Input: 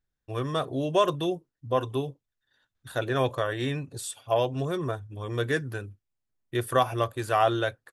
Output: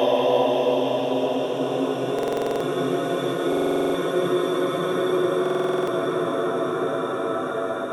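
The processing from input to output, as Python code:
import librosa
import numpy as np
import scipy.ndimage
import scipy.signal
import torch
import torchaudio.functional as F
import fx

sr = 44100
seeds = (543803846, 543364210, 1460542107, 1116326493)

p1 = np.clip(x, -10.0 ** (-20.5 / 20.0), 10.0 ** (-20.5 / 20.0))
p2 = x + (p1 * 10.0 ** (-9.0 / 20.0))
p3 = scipy.signal.sosfilt(scipy.signal.butter(4, 210.0, 'highpass', fs=sr, output='sos'), p2)
p4 = fx.paulstretch(p3, sr, seeds[0], factor=15.0, window_s=0.5, from_s=4.46)
p5 = fx.buffer_glitch(p4, sr, at_s=(2.14, 3.48, 5.41), block=2048, repeats=9)
y = p5 * 10.0 ** (5.5 / 20.0)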